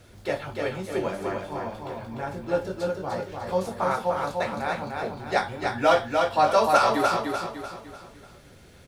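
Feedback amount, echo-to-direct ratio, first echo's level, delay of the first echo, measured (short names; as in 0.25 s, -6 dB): 42%, -3.0 dB, -4.0 dB, 0.298 s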